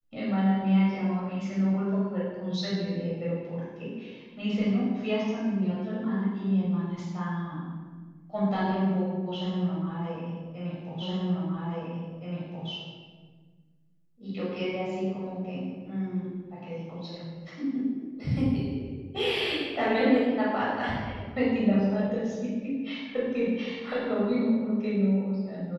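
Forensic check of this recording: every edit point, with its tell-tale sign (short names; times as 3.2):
11.02 repeat of the last 1.67 s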